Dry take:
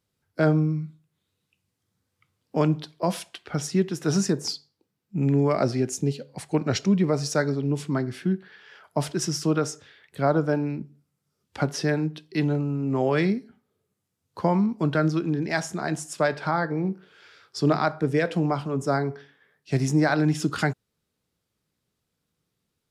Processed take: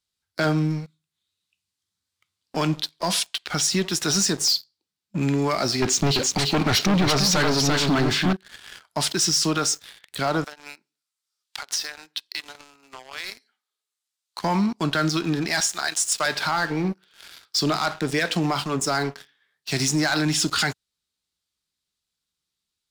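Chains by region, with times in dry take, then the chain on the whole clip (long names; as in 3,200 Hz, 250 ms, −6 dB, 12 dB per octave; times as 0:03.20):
0:05.82–0:08.33: leveller curve on the samples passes 3 + high-frequency loss of the air 140 metres + single-tap delay 339 ms −5.5 dB
0:10.44–0:14.43: high-pass filter 780 Hz + downward compressor 16 to 1, threshold −38 dBFS
0:15.60–0:16.26: high-pass filter 1,300 Hz 6 dB per octave + transient designer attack +8 dB, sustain −3 dB + upward compression, threshold −34 dBFS
whole clip: octave-band graphic EQ 125/250/500/4,000/8,000 Hz −11/−5/−9/+9/+6 dB; leveller curve on the samples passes 3; brickwall limiter −14 dBFS; level −1 dB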